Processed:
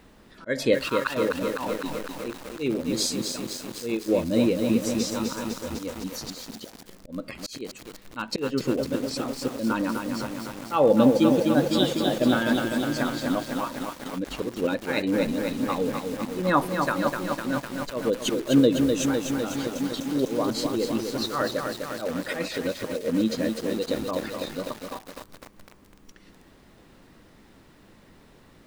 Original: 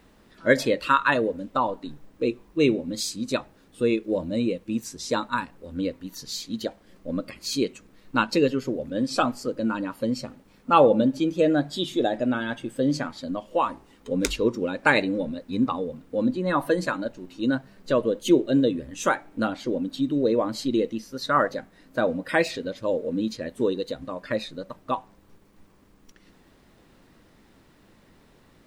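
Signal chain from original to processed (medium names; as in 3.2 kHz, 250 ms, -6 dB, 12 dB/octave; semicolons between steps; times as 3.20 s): slow attack 286 ms; bit-crushed delay 252 ms, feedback 80%, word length 7-bit, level -4.5 dB; trim +3 dB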